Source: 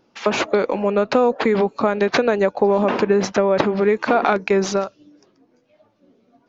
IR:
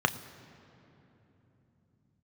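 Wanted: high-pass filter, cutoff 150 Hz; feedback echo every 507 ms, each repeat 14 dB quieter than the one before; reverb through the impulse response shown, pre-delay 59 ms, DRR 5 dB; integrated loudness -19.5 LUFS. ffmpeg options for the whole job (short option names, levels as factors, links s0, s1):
-filter_complex "[0:a]highpass=150,aecho=1:1:507|1014:0.2|0.0399,asplit=2[s0][s1];[1:a]atrim=start_sample=2205,adelay=59[s2];[s1][s2]afir=irnorm=-1:irlink=0,volume=0.15[s3];[s0][s3]amix=inputs=2:normalize=0,volume=0.841"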